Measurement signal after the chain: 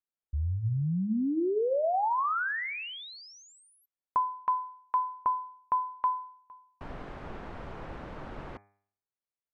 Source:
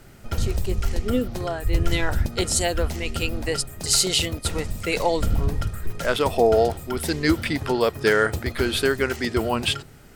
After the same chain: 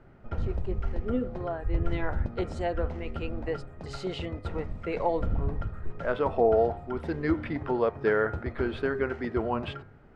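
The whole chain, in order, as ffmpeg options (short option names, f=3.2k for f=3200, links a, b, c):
-af "lowpass=1.3k,lowshelf=f=420:g=-3.5,bandreject=f=101:t=h:w=4,bandreject=f=202:t=h:w=4,bandreject=f=303:t=h:w=4,bandreject=f=404:t=h:w=4,bandreject=f=505:t=h:w=4,bandreject=f=606:t=h:w=4,bandreject=f=707:t=h:w=4,bandreject=f=808:t=h:w=4,bandreject=f=909:t=h:w=4,bandreject=f=1.01k:t=h:w=4,bandreject=f=1.111k:t=h:w=4,bandreject=f=1.212k:t=h:w=4,bandreject=f=1.313k:t=h:w=4,bandreject=f=1.414k:t=h:w=4,bandreject=f=1.515k:t=h:w=4,bandreject=f=1.616k:t=h:w=4,bandreject=f=1.717k:t=h:w=4,bandreject=f=1.818k:t=h:w=4,bandreject=f=1.919k:t=h:w=4,bandreject=f=2.02k:t=h:w=4,bandreject=f=2.121k:t=h:w=4,bandreject=f=2.222k:t=h:w=4,bandreject=f=2.323k:t=h:w=4,bandreject=f=2.424k:t=h:w=4,volume=-3dB"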